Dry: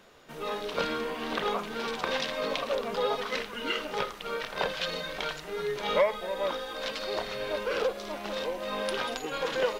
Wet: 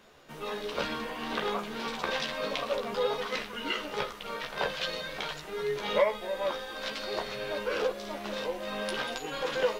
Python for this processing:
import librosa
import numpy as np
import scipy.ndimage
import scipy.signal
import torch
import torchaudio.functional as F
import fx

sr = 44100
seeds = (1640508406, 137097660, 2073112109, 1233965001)

y = fx.doubler(x, sr, ms=14.0, db=-5)
y = F.gain(torch.from_numpy(y), -2.0).numpy()